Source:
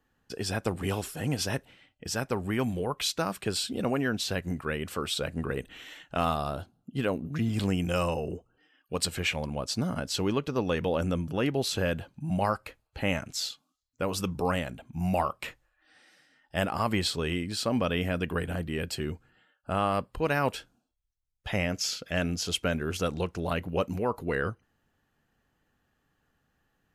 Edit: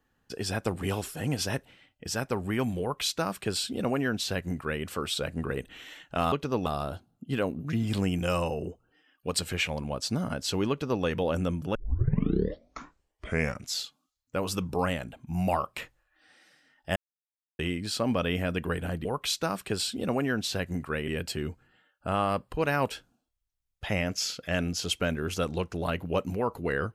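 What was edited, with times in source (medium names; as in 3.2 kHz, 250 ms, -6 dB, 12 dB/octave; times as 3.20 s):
2.81–4.84 s: copy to 18.71 s
10.36–10.70 s: copy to 6.32 s
11.41 s: tape start 1.99 s
16.62–17.25 s: mute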